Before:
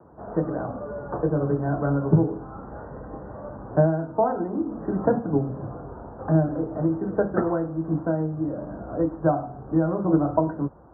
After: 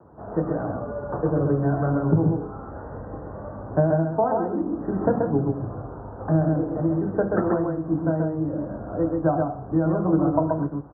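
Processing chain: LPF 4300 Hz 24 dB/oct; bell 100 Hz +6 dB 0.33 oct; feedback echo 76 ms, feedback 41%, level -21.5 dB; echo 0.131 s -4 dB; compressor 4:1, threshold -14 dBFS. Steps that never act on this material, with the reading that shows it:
LPF 4300 Hz: input band ends at 1400 Hz

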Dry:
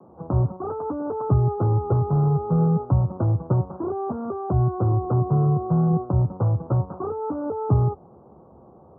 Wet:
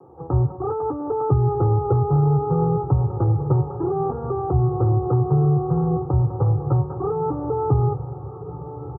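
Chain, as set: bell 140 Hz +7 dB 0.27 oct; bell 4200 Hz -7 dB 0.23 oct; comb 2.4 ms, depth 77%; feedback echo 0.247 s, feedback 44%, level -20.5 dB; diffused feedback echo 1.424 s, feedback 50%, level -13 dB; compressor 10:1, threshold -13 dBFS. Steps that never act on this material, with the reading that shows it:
bell 4200 Hz: input band ends at 850 Hz

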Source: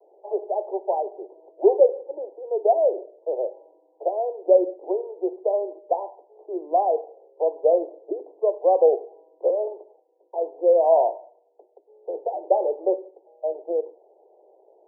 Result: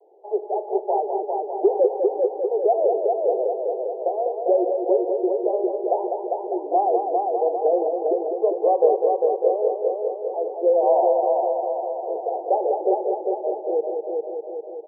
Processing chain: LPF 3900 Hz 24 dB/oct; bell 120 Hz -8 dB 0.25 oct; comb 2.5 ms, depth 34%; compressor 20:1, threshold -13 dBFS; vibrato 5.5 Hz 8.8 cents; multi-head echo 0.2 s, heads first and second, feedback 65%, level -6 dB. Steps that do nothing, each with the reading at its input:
LPF 3900 Hz: input band ends at 1000 Hz; bell 120 Hz: input band starts at 290 Hz

